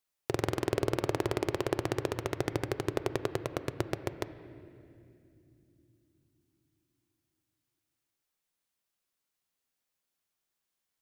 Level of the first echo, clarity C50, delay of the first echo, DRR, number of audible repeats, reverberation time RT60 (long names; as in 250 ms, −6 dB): no echo audible, 12.5 dB, no echo audible, 11.5 dB, no echo audible, 2.7 s